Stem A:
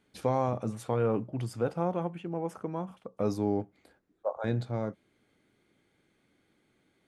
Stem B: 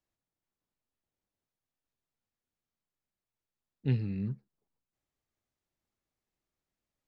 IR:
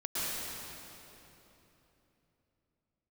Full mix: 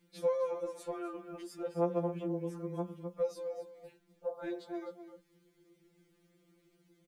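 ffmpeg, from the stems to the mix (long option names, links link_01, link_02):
-filter_complex "[0:a]lowshelf=frequency=580:width_type=q:width=1.5:gain=7.5,acrossover=split=280|3000[link_01][link_02][link_03];[link_01]acompressor=threshold=-35dB:ratio=10[link_04];[link_04][link_02][link_03]amix=inputs=3:normalize=0,acrusher=bits=11:mix=0:aa=0.000001,volume=-2.5dB,asplit=3[link_05][link_06][link_07];[link_06]volume=-12dB[link_08];[1:a]volume=-17dB[link_09];[link_07]apad=whole_len=311962[link_10];[link_09][link_10]sidechaingate=range=-33dB:threshold=-60dB:ratio=16:detection=peak[link_11];[link_08]aecho=0:1:257:1[link_12];[link_05][link_11][link_12]amix=inputs=3:normalize=0,acrossover=split=170|490[link_13][link_14][link_15];[link_13]acompressor=threshold=-47dB:ratio=4[link_16];[link_14]acompressor=threshold=-48dB:ratio=4[link_17];[link_15]acompressor=threshold=-31dB:ratio=4[link_18];[link_16][link_17][link_18]amix=inputs=3:normalize=0,afftfilt=real='re*2.83*eq(mod(b,8),0)':imag='im*2.83*eq(mod(b,8),0)':win_size=2048:overlap=0.75"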